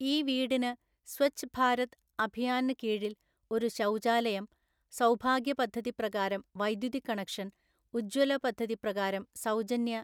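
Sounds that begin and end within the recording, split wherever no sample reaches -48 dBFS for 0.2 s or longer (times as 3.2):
1.08–1.93
2.19–3.13
3.51–4.45
4.92–7.49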